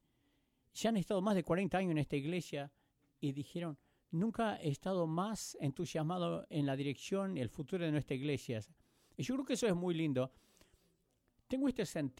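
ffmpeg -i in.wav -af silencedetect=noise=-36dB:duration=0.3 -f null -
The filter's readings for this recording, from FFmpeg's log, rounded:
silence_start: 0.00
silence_end: 0.78 | silence_duration: 0.78
silence_start: 2.62
silence_end: 3.24 | silence_duration: 0.61
silence_start: 3.70
silence_end: 4.14 | silence_duration: 0.43
silence_start: 8.58
silence_end: 9.19 | silence_duration: 0.61
silence_start: 10.25
silence_end: 11.53 | silence_duration: 1.27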